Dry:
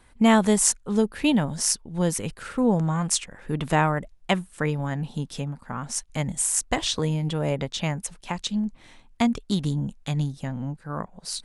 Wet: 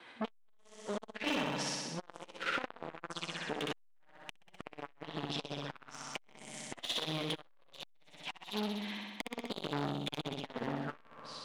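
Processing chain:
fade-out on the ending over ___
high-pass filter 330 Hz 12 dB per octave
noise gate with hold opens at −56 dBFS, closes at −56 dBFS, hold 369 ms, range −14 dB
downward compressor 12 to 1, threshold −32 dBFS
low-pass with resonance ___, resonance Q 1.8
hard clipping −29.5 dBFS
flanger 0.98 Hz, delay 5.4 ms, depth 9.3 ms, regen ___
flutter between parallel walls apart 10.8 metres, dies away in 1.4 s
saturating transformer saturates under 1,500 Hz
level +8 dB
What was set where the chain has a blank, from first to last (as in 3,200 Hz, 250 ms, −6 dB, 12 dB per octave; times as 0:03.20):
0.63 s, 3,300 Hz, +42%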